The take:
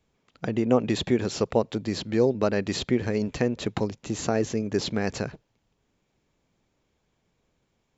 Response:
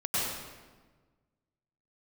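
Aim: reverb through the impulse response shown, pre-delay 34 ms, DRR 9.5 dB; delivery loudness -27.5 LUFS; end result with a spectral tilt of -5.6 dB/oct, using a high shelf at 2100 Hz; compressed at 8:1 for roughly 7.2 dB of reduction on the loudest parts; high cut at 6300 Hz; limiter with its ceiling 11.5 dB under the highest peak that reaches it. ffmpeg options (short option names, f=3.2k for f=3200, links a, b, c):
-filter_complex "[0:a]lowpass=6.3k,highshelf=f=2.1k:g=-5,acompressor=threshold=-24dB:ratio=8,alimiter=limit=-22.5dB:level=0:latency=1,asplit=2[a][b];[1:a]atrim=start_sample=2205,adelay=34[c];[b][c]afir=irnorm=-1:irlink=0,volume=-18.5dB[d];[a][d]amix=inputs=2:normalize=0,volume=7dB"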